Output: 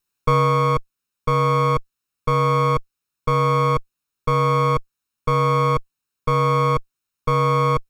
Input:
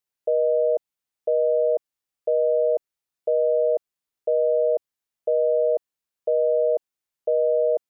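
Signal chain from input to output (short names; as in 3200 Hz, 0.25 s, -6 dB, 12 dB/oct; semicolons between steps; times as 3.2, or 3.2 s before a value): minimum comb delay 0.75 ms; vocal rider 0.5 s; gain +8.5 dB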